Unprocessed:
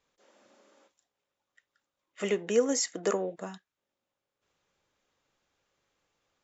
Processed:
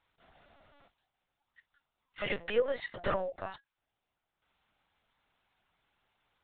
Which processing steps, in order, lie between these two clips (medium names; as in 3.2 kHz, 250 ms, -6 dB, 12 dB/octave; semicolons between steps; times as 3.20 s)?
high-pass 560 Hz 24 dB/octave; LPC vocoder at 8 kHz pitch kept; trim +3 dB